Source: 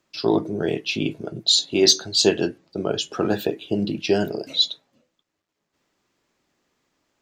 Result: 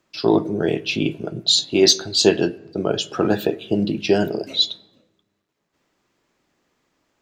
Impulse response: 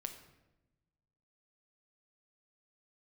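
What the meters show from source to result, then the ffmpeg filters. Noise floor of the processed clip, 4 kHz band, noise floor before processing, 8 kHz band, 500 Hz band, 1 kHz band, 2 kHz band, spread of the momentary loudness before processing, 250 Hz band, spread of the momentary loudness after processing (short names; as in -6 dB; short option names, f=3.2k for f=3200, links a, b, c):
-75 dBFS, +1.0 dB, -79 dBFS, +0.5 dB, +3.0 dB, +3.0 dB, +2.5 dB, 10 LU, +3.5 dB, 9 LU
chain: -filter_complex "[0:a]asplit=2[a][b];[1:a]atrim=start_sample=2205,lowpass=3.6k[c];[b][c]afir=irnorm=-1:irlink=0,volume=-7.5dB[d];[a][d]amix=inputs=2:normalize=0,volume=1dB"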